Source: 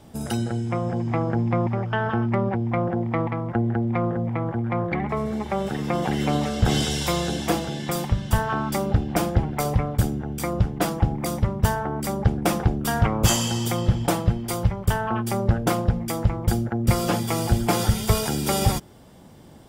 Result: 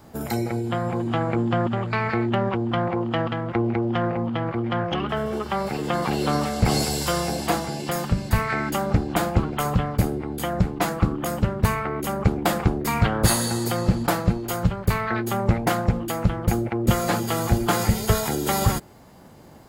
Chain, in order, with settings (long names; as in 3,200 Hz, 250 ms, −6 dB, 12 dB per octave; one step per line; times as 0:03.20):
formants moved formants +6 semitones